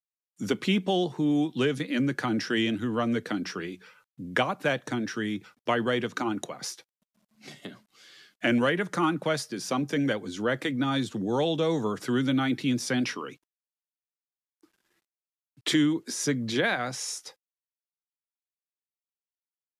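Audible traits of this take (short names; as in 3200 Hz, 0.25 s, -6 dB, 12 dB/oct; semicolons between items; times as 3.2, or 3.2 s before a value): a quantiser's noise floor 12-bit, dither none; MP3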